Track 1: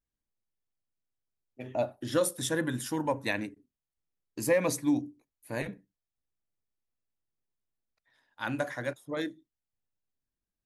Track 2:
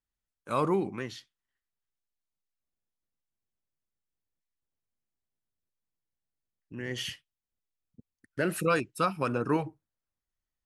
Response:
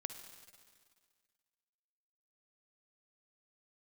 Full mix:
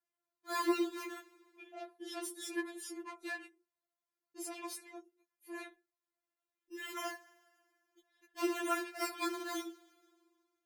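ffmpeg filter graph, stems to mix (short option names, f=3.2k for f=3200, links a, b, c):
-filter_complex "[0:a]asoftclip=type=tanh:threshold=-31dB,volume=-3.5dB[a];[1:a]acrusher=samples=12:mix=1:aa=0.000001:lfo=1:lforange=7.2:lforate=0.56,highshelf=f=7.6k:g=-5,asoftclip=type=hard:threshold=-30.5dB,volume=-1dB,asplit=2[b][c];[c]volume=-7dB[d];[2:a]atrim=start_sample=2205[e];[d][e]afir=irnorm=-1:irlink=0[f];[a][b][f]amix=inputs=3:normalize=0,highpass=210,afftfilt=real='re*4*eq(mod(b,16),0)':imag='im*4*eq(mod(b,16),0)':win_size=2048:overlap=0.75"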